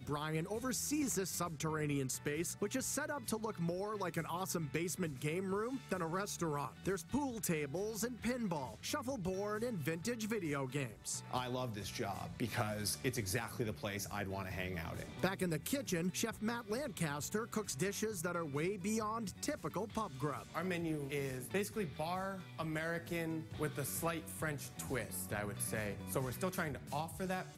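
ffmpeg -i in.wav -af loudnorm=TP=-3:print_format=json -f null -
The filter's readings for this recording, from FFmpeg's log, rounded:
"input_i" : "-39.8",
"input_tp" : "-19.0",
"input_lra" : "1.8",
"input_thresh" : "-49.8",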